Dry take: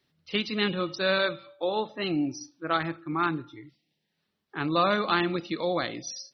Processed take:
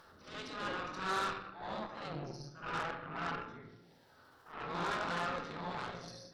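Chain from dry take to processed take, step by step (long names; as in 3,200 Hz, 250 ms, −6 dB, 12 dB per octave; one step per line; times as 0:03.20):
gate on every frequency bin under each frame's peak −10 dB weak
high shelf with overshoot 1,800 Hz −8.5 dB, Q 3
transient designer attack −8 dB, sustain +6 dB
upward compression, threshold −37 dBFS
backwards echo 70 ms −6.5 dB
convolution reverb RT60 0.95 s, pre-delay 7 ms, DRR 4 dB
harmonic generator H 8 −18 dB, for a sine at −18 dBFS
highs frequency-modulated by the lows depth 0.15 ms
level −6 dB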